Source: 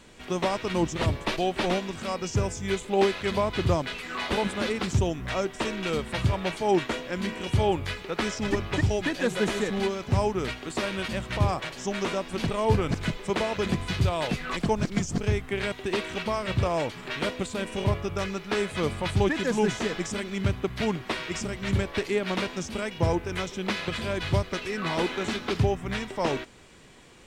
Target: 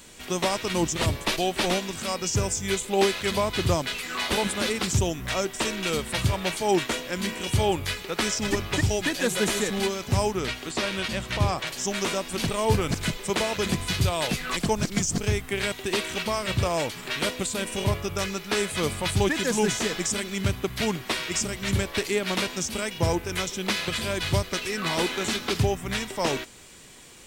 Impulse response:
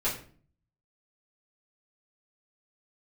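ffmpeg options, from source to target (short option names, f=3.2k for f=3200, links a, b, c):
-filter_complex "[0:a]asettb=1/sr,asplit=3[a][b][c];[a]atrim=end=10.314[d];[b]atrim=start=10.31:end=11.67,asetpts=PTS-STARTPTS,afade=t=in:d=0.004:c=qsin,afade=t=out:st=1.356:d=0.004:c=qsin,acrossover=split=6400[e][f];[f]acompressor=threshold=-59dB:ratio=4:attack=1:release=60[g];[e][g]amix=inputs=2:normalize=0[h];[c]atrim=start=11.666[i];[d][h]acrossfade=d=0.004:c1=hsin:c2=qsin[j];[j][i]acrossfade=d=0.004:c1=qsin:c2=hsin,aemphasis=mode=production:type=75kf"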